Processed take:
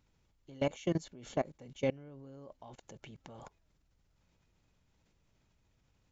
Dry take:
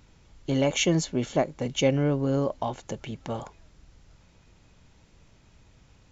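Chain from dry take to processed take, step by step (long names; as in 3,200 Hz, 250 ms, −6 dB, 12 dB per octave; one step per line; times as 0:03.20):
output level in coarse steps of 22 dB
level −6.5 dB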